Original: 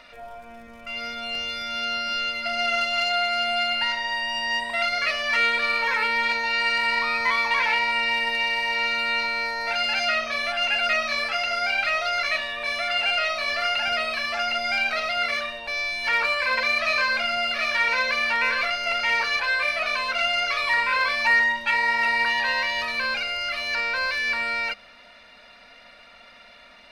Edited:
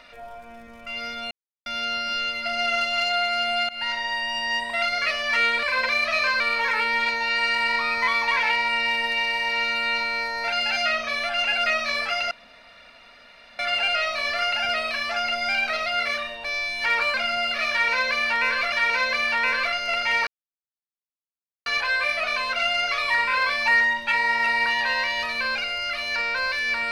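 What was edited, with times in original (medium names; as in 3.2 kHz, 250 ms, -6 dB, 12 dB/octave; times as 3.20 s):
1.31–1.66 s: mute
3.69–4.03 s: fade in equal-power, from -22 dB
11.54–12.82 s: room tone
16.37–17.14 s: move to 5.63 s
17.70–18.72 s: loop, 2 plays
19.25 s: insert silence 1.39 s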